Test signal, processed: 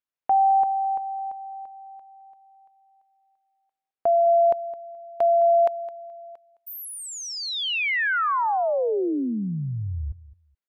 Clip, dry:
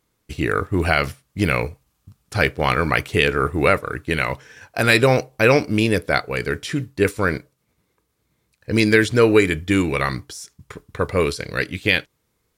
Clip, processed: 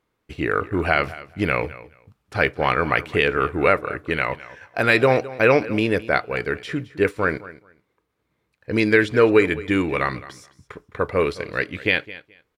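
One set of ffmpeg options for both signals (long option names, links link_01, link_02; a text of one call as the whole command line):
ffmpeg -i in.wav -filter_complex "[0:a]bass=frequency=250:gain=-6,treble=frequency=4000:gain=-14,asplit=2[link_01][link_02];[link_02]aecho=0:1:213|426:0.133|0.0227[link_03];[link_01][link_03]amix=inputs=2:normalize=0" out.wav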